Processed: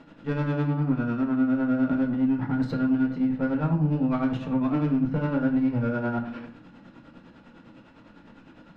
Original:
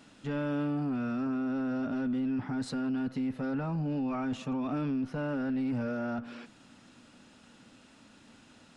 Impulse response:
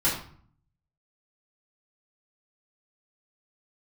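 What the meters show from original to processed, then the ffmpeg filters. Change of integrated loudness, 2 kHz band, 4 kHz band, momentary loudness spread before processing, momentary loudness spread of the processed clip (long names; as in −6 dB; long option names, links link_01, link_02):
+7.5 dB, +6.0 dB, can't be measured, 3 LU, 5 LU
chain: -filter_complex "[0:a]adynamicsmooth=sensitivity=4:basefreq=2300,tremolo=f=9.9:d=0.75,asoftclip=type=tanh:threshold=-27dB,asplit=2[link_01][link_02];[1:a]atrim=start_sample=2205[link_03];[link_02][link_03]afir=irnorm=-1:irlink=0,volume=-12.5dB[link_04];[link_01][link_04]amix=inputs=2:normalize=0,volume=7.5dB"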